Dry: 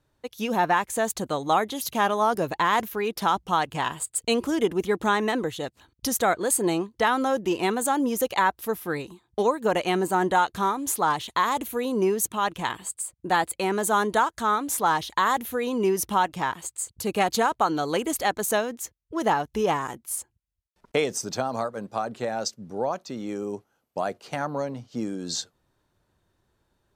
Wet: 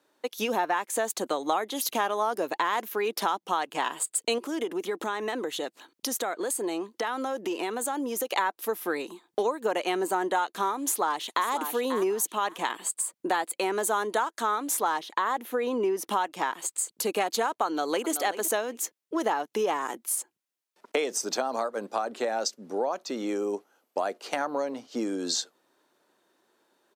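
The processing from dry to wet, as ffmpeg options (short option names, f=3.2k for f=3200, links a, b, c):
-filter_complex "[0:a]asettb=1/sr,asplit=3[a][b][c];[a]atrim=end=4.384[d];[b]atrim=start=4.38:end=8.32,asetpts=PTS-STARTPTS,afade=t=in:d=0.004:c=qsin,afade=t=out:st=3.936:d=0.004:c=qsin,acompressor=threshold=-34dB:ratio=2.5:attack=3.2:release=140:knee=1:detection=peak[e];[c]atrim=start=8.316[f];[d][e]acrossfade=d=0.004:c1=hsin:c2=qsin[g];[g][f]acrossfade=d=0.004:c1=qsin:c2=hsin,asplit=2[h][i];[i]afade=t=in:st=10.84:d=0.01,afade=t=out:st=11.49:d=0.01,aecho=0:1:540|1080|1620:0.266073|0.0532145|0.0106429[j];[h][j]amix=inputs=2:normalize=0,asettb=1/sr,asplit=3[k][l][m];[k]atrim=end=14.994[n];[l]atrim=start=14.99:end=16.07,asetpts=PTS-STARTPTS,afade=t=in:d=0.004:c=qsin,afade=t=out:st=1.076:d=0.004:c=qsin,highshelf=f=3.2k:g=-10[o];[m]atrim=start=16.066[p];[n][o]acrossfade=d=0.004:c1=hsin:c2=qsin[q];[q][p]acrossfade=d=0.004:c1=qsin:c2=hsin,asplit=2[r][s];[s]afade=t=in:st=17.66:d=0.01,afade=t=out:st=18.09:d=0.01,aecho=0:1:380|760:0.237137|0.0237137[t];[r][t]amix=inputs=2:normalize=0,highpass=f=270:w=0.5412,highpass=f=270:w=1.3066,acompressor=threshold=-32dB:ratio=3,volume=5.5dB"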